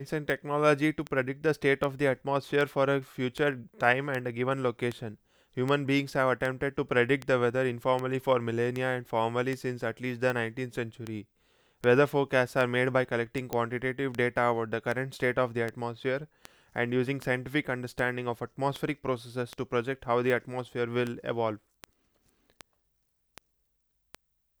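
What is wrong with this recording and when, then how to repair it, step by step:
scratch tick 78 rpm
0:13.53: click −16 dBFS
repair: click removal

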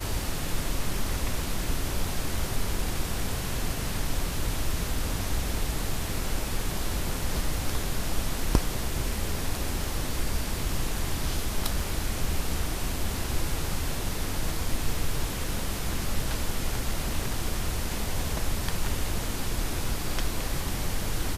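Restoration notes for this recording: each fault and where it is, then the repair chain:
0:11.80: drop-out 2.5 ms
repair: repair the gap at 0:11.80, 2.5 ms

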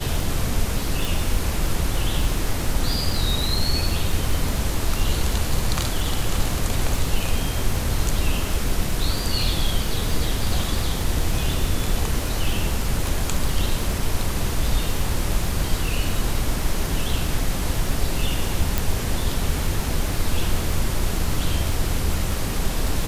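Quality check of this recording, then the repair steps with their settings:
surface crackle 54 per second −26 dBFS
0:01.05: click
0:18.78: click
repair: click removal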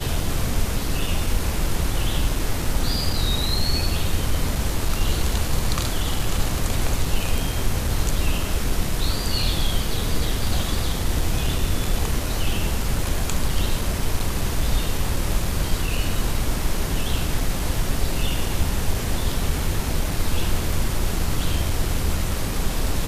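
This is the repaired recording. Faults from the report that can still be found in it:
0:18.78: click

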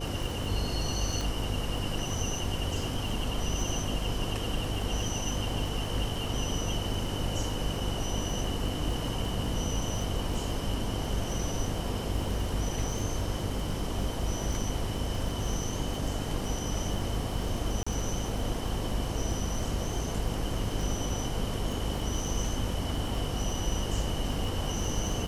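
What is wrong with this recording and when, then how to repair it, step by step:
mains buzz 50 Hz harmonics 10 −36 dBFS
surface crackle 27 per second −35 dBFS
0:01.21: click
0:17.83–0:17.86: drop-out 35 ms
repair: click removal
hum removal 50 Hz, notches 10
repair the gap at 0:17.83, 35 ms

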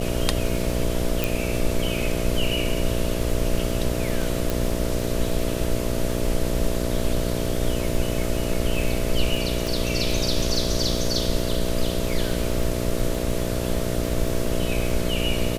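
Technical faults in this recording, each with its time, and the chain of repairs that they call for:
mains buzz 60 Hz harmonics 11 −27 dBFS
surface crackle 48 per second −29 dBFS
0:01.24: click
0:04.50: click
0:09.67: click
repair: click removal
hum removal 60 Hz, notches 11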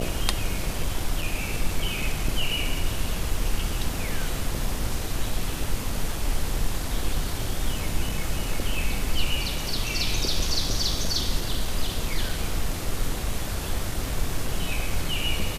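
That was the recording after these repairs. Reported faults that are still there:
0:09.67: click

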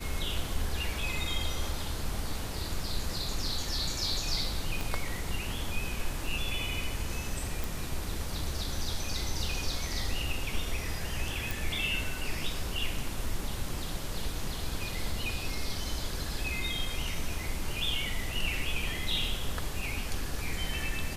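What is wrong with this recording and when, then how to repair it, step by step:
0:04.81: click
0:07.64: click
0:11.51: click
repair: click removal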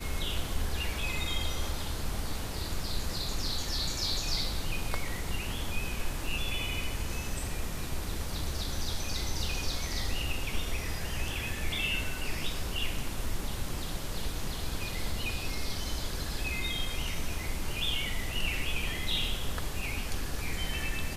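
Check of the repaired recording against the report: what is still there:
0:04.81: click

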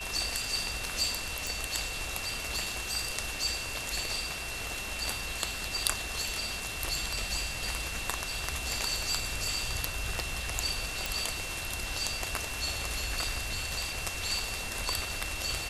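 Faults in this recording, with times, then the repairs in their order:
whistle 2,700 Hz −39 dBFS
0:01.47: click
0:11.06: click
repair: click removal
notch filter 2,700 Hz, Q 30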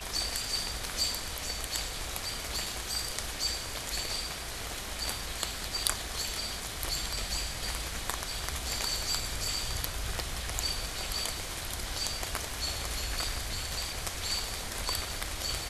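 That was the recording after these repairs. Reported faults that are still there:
0:11.06: click

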